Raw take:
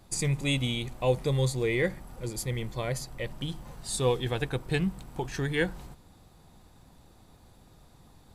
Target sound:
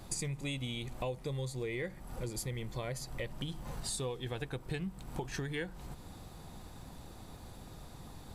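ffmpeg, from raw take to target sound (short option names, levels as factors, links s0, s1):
-af "acompressor=threshold=0.00708:ratio=6,volume=2.11"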